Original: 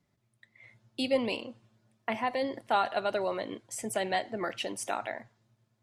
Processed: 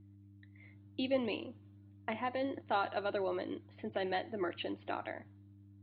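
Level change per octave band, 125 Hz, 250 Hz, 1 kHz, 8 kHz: −1.0 dB, −2.5 dB, −6.5 dB, below −40 dB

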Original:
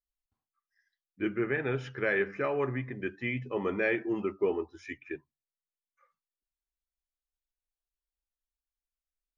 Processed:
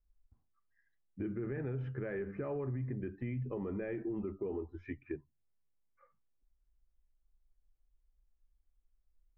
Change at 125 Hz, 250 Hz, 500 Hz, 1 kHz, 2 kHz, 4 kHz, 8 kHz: +0.5 dB, −5.0 dB, −8.5 dB, −13.5 dB, −18.0 dB, below −20 dB, can't be measured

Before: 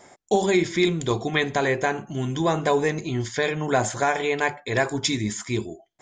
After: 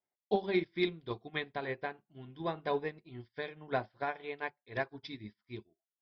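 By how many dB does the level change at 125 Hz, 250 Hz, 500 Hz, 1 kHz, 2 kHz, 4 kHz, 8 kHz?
−18.0 dB, −14.0 dB, −13.0 dB, −13.5 dB, −14.0 dB, −15.0 dB, below −40 dB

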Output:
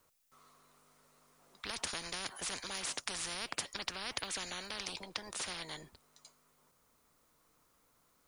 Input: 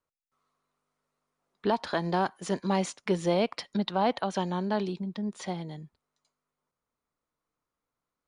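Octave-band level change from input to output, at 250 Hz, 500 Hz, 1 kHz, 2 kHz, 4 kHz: −22.0, −20.0, −15.0, −3.0, +1.0 decibels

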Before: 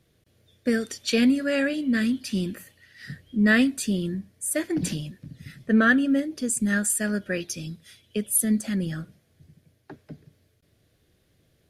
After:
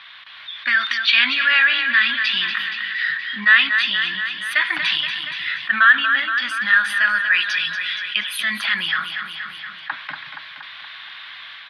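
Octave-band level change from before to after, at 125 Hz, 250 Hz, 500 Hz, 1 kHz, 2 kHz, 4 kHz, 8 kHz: below −15 dB, −17.5 dB, below −15 dB, +12.5 dB, +14.5 dB, +17.0 dB, −12.5 dB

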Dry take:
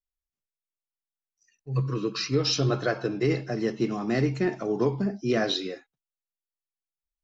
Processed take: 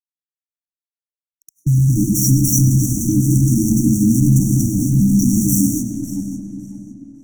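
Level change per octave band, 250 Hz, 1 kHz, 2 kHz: +14.0 dB, below −20 dB, below −30 dB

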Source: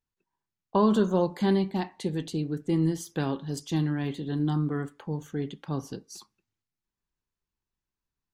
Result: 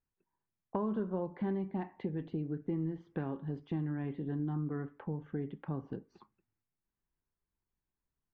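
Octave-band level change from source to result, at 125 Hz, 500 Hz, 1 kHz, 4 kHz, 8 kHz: −8.0 dB, −10.5 dB, −12.0 dB, below −20 dB, below −35 dB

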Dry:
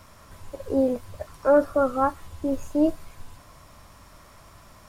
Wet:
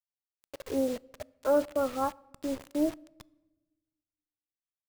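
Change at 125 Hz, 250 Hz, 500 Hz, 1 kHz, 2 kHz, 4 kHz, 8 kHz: −11.5 dB, −7.0 dB, −7.0 dB, −8.0 dB, −8.5 dB, can't be measured, +0.5 dB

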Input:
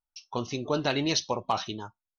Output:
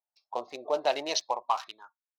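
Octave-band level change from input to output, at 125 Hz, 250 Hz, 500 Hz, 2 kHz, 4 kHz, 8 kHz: below −25 dB, −14.0 dB, 0.0 dB, −4.5 dB, −3.5 dB, can't be measured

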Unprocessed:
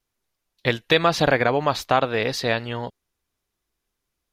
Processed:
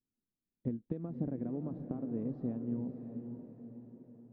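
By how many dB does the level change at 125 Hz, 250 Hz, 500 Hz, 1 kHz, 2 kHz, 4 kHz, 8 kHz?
−11.0 dB, −6.5 dB, −22.5 dB, −34.5 dB, below −40 dB, below −40 dB, below −40 dB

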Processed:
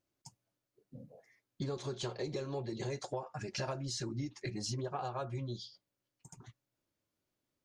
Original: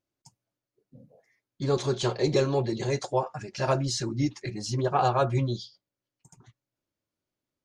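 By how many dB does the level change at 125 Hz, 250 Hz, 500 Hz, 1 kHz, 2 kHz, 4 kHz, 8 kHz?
−11.5, −11.5, −13.0, −14.5, −10.5, −8.5, −8.0 decibels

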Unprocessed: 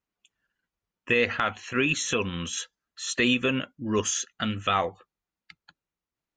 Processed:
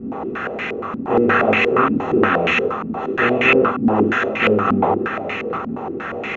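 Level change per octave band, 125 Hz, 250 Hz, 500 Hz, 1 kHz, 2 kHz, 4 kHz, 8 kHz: +7.5 dB, +11.5 dB, +13.5 dB, +13.0 dB, +10.0 dB, +1.0 dB, below −15 dB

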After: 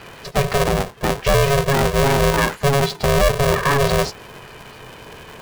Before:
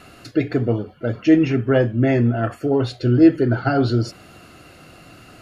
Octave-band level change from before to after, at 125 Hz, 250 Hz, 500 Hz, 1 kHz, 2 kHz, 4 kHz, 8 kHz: 0.0 dB, −8.5 dB, +2.5 dB, +9.5 dB, +7.5 dB, +11.5 dB, can't be measured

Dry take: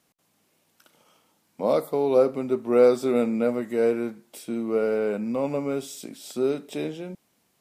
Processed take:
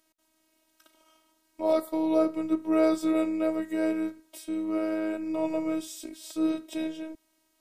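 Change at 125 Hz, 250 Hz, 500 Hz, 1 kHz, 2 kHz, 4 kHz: below −10 dB, +1.0 dB, −7.5 dB, −3.5 dB, −2.5 dB, −2.0 dB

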